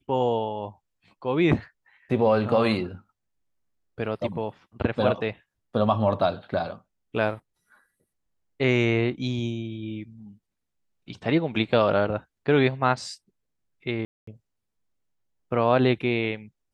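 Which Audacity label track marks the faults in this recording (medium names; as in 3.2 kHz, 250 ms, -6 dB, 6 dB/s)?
14.050000	14.270000	dropout 224 ms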